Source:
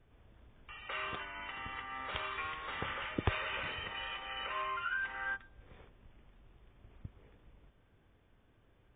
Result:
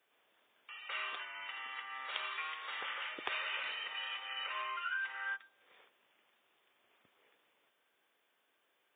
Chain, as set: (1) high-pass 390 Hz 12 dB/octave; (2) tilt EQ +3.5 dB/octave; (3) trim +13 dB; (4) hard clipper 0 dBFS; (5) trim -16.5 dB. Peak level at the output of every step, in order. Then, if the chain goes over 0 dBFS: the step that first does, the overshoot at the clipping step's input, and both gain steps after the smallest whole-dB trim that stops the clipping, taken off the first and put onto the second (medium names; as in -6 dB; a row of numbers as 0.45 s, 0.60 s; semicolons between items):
-18.5 dBFS, -15.5 dBFS, -2.5 dBFS, -2.5 dBFS, -19.0 dBFS; nothing clips